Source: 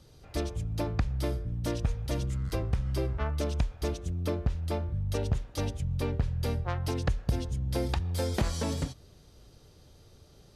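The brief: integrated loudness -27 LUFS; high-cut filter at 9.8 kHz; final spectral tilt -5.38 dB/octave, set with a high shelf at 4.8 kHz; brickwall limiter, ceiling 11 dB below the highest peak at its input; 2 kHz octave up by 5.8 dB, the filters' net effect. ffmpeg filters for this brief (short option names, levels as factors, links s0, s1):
-af "lowpass=9800,equalizer=f=2000:t=o:g=6,highshelf=f=4800:g=7,volume=2.11,alimiter=limit=0.158:level=0:latency=1"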